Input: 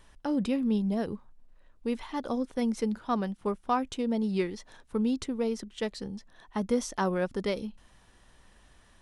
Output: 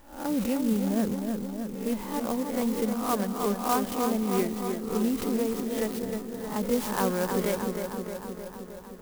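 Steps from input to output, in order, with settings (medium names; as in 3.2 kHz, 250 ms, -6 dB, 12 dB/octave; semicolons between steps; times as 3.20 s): reverse spectral sustain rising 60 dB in 0.47 s; bucket-brigade echo 310 ms, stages 4096, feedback 68%, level -5.5 dB; sampling jitter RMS 0.066 ms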